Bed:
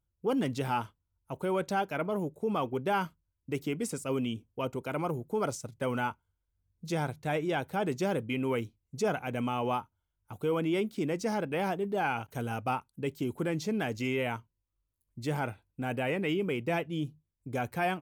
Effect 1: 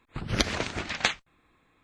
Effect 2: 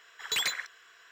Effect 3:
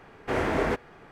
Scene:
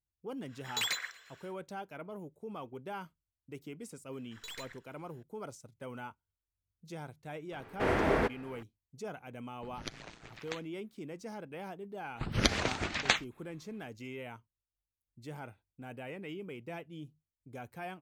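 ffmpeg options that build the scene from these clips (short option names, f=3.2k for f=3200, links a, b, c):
-filter_complex "[2:a]asplit=2[a][b];[1:a]asplit=2[c][d];[0:a]volume=-12.5dB[e];[a]asplit=5[f][g][h][i][j];[g]adelay=117,afreqshift=32,volume=-21.5dB[k];[h]adelay=234,afreqshift=64,volume=-26.7dB[l];[i]adelay=351,afreqshift=96,volume=-31.9dB[m];[j]adelay=468,afreqshift=128,volume=-37.1dB[n];[f][k][l][m][n]amix=inputs=5:normalize=0[o];[b]aeval=exprs='if(lt(val(0),0),0.447*val(0),val(0))':c=same[p];[3:a]equalizer=f=6.9k:w=2:g=-4[q];[c]aeval=exprs='val(0)*sin(2*PI*57*n/s)':c=same[r];[o]atrim=end=1.11,asetpts=PTS-STARTPTS,volume=-4dB,afade=t=in:d=0.1,afade=t=out:st=1.01:d=0.1,adelay=450[s];[p]atrim=end=1.11,asetpts=PTS-STARTPTS,volume=-14dB,afade=t=in:d=0.004:c=hsin,afade=t=out:st=1.106:d=0.004:c=hsin,adelay=4120[t];[q]atrim=end=1.11,asetpts=PTS-STARTPTS,volume=-2.5dB,afade=t=in:d=0.004:c=hsin,afade=t=out:st=1.106:d=0.004:c=hsin,adelay=7520[u];[r]atrim=end=1.83,asetpts=PTS-STARTPTS,volume=-16dB,afade=t=in:d=0.004:c=hsin,afade=t=out:st=1.826:d=0.004:c=hsin,adelay=9470[v];[d]atrim=end=1.83,asetpts=PTS-STARTPTS,volume=-2dB,afade=t=in:d=0.004:c=hsin,afade=t=out:st=1.826:d=0.004:c=hsin,adelay=12050[w];[e][s][t][u][v][w]amix=inputs=6:normalize=0"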